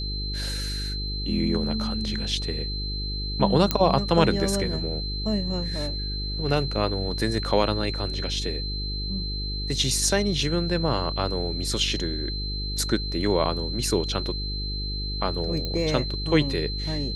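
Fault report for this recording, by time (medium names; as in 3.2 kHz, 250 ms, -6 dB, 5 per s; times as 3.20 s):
buzz 50 Hz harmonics 9 -31 dBFS
whine 4.1 kHz -32 dBFS
3.71 s: pop -6 dBFS
15.65 s: pop -16 dBFS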